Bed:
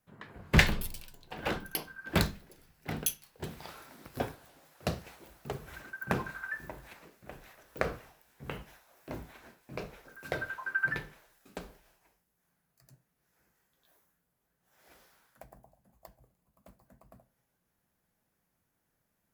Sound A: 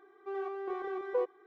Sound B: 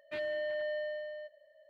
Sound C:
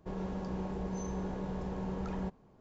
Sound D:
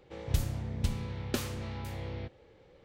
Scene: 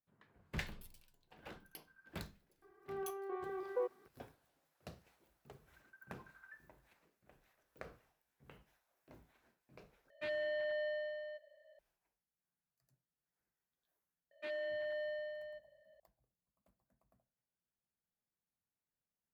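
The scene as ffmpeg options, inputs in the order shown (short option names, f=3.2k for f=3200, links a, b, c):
-filter_complex "[2:a]asplit=2[a][b];[0:a]volume=-19.5dB[c];[1:a]lowpass=2.6k[d];[a]equalizer=f=340:t=o:w=1.2:g=-3[e];[b]acrossover=split=200[f][g];[f]adelay=270[h];[h][g]amix=inputs=2:normalize=0[i];[c]asplit=2[j][k];[j]atrim=end=10.104[l];[e]atrim=end=1.69,asetpts=PTS-STARTPTS,volume=-2dB[m];[k]atrim=start=11.786[n];[d]atrim=end=1.46,asetpts=PTS-STARTPTS,volume=-6dB,afade=t=in:d=0.004:c=hsin,afade=t=out:st=1.456:d=0.004:c=hsin,adelay=2620[o];[i]atrim=end=1.69,asetpts=PTS-STARTPTS,volume=-5dB,afade=t=in:d=0.004:c=hsin,afade=t=out:st=1.686:d=0.004:c=hsin,adelay=14310[p];[l][m]acrossfade=d=0.004:c1=hsin:c2=hsin[q];[q][n]acrossfade=d=0.004:c1=hsin:c2=hsin[r];[r][o][p]amix=inputs=3:normalize=0"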